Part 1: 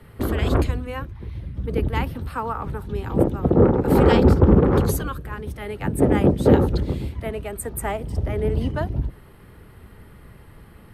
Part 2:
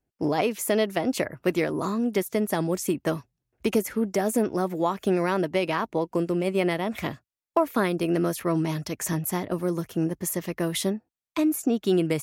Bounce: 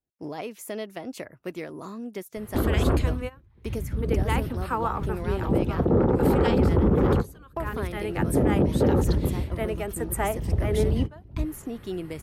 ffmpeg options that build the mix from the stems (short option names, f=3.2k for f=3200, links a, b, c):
-filter_complex "[0:a]adelay=2350,volume=0dB[a];[1:a]volume=-10.5dB,asplit=2[b][c];[c]apad=whole_len=585662[d];[a][d]sidechaingate=range=-21dB:threshold=-51dB:ratio=16:detection=peak[e];[e][b]amix=inputs=2:normalize=0,alimiter=limit=-12.5dB:level=0:latency=1:release=58"